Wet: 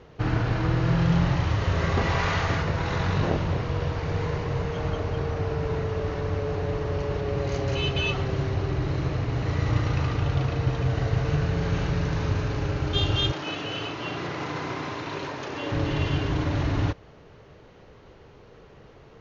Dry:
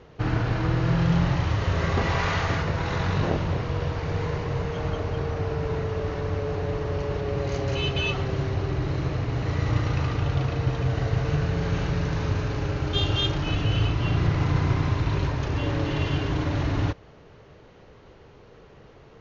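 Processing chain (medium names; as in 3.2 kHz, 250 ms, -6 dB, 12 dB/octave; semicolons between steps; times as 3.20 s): 13.32–15.72 s: high-pass 300 Hz 12 dB/octave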